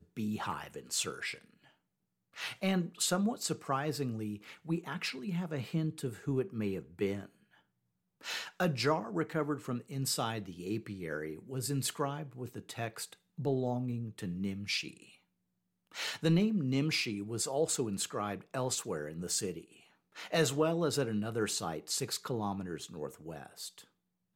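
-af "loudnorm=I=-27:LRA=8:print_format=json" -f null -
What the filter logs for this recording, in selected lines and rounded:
"input_i" : "-35.4",
"input_tp" : "-15.4",
"input_lra" : "5.2",
"input_thresh" : "-45.9",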